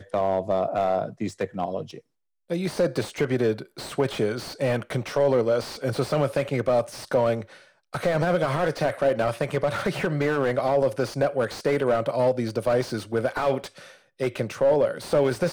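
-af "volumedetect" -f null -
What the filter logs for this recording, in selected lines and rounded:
mean_volume: -24.9 dB
max_volume: -10.7 dB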